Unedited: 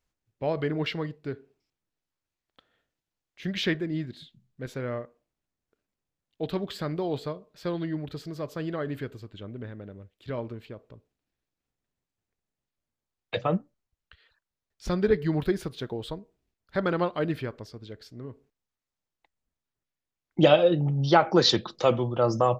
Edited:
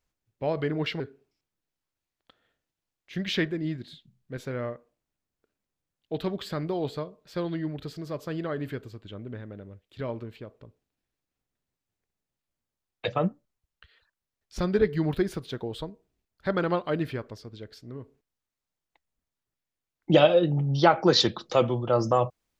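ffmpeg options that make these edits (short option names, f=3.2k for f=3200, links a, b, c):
-filter_complex "[0:a]asplit=2[a][b];[a]atrim=end=1.002[c];[b]atrim=start=1.288[d];[c][d]acrossfade=d=0.004:c1=hsin:c2=hsin"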